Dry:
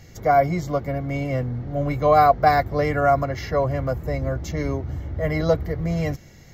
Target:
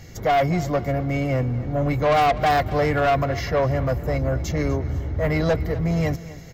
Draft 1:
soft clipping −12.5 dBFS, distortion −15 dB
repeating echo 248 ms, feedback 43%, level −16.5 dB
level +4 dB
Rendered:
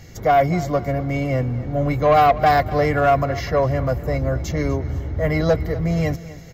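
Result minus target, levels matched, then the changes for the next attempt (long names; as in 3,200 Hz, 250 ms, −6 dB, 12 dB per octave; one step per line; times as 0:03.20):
soft clipping: distortion −6 dB
change: soft clipping −19 dBFS, distortion −9 dB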